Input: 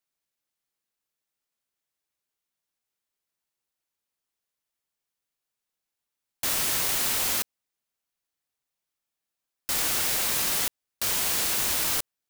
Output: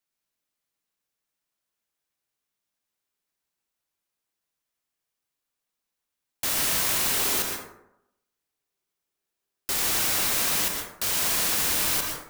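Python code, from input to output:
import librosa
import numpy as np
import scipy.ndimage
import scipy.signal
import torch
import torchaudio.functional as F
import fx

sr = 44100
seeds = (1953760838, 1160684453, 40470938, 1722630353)

y = fx.peak_eq(x, sr, hz=390.0, db=12.0, octaves=0.23, at=(7.11, 9.73))
y = fx.rev_plate(y, sr, seeds[0], rt60_s=0.82, hf_ratio=0.45, predelay_ms=105, drr_db=2.0)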